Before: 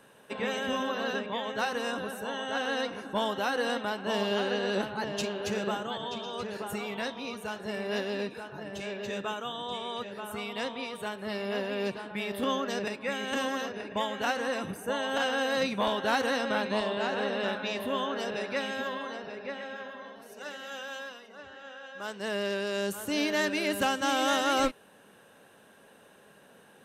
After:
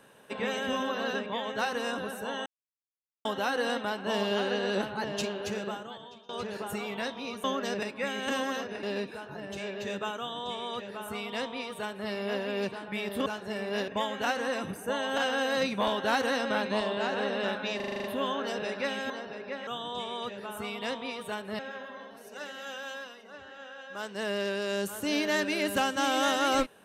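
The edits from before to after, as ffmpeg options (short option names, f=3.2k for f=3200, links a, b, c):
-filter_complex "[0:a]asplit=18[a][b][c][d][e][f][g][h][i][j][k][l][m][n][o][p][q][r];[a]atrim=end=2.46,asetpts=PTS-STARTPTS,afade=t=out:st=2.456:d=0.004:c=hsin[s];[b]atrim=start=2.46:end=3.25,asetpts=PTS-STARTPTS,volume=0[t];[c]atrim=start=3.25:end=6.29,asetpts=PTS-STARTPTS,afade=t=in:d=0.004:c=hsin,afade=t=out:st=2.01:d=1.03:silence=0.0707946[u];[d]atrim=start=6.29:end=7.442,asetpts=PTS-STARTPTS,afade=t=in:d=0.004:c=hsin:silence=0.0707946[v];[e]atrim=start=12.488:end=13.882[w];[f]atrim=start=8.058:end=12.492[x];[g]atrim=start=7.438:end=8.062[y];[h]atrim=start=13.878:end=17.802[z];[i]atrim=start=17.758:end=17.802[aa];[j]atrim=start=17.758:end=17.802[ab];[k]atrim=start=17.758:end=17.802[ac];[l]atrim=start=17.758:end=17.802[ad];[m]atrim=start=17.758:end=17.802[ae];[n]atrim=start=17.758:end=17.802[af];[o]atrim=start=17.758:end=18.822[ag];[p]atrim=start=19.068:end=19.642[ah];[q]atrim=start=9.408:end=11.332[ai];[r]atrim=start=19.638[aj];[s][t][u][v]concat=n=4:v=0:a=1[ak];[ak][w]acrossfade=d=0.004:c1=hsin:c2=hsin[al];[al][x]acrossfade=d=0.004:c1=hsin:c2=hsin[am];[am][y]acrossfade=d=0.004:c1=hsin:c2=hsin[an];[an][z]acrossfade=d=0.004:c1=hsin:c2=hsin[ao];[ao][aa]acrossfade=d=0.004:c1=hsin:c2=hsin[ap];[ap][ab]acrossfade=d=0.004:c1=hsin:c2=hsin[aq];[aq][ac]acrossfade=d=0.004:c1=hsin:c2=hsin[ar];[ar][ad]acrossfade=d=0.004:c1=hsin:c2=hsin[as];[as][ae]acrossfade=d=0.004:c1=hsin:c2=hsin[at];[at][af]acrossfade=d=0.004:c1=hsin:c2=hsin[au];[au][ag]acrossfade=d=0.004:c1=hsin:c2=hsin[av];[av][ah]acrossfade=d=0.004:c1=hsin:c2=hsin[aw];[aw][ai]acrossfade=d=0.004:c1=hsin:c2=hsin[ax];[ax][aj]acrossfade=d=0.004:c1=hsin:c2=hsin"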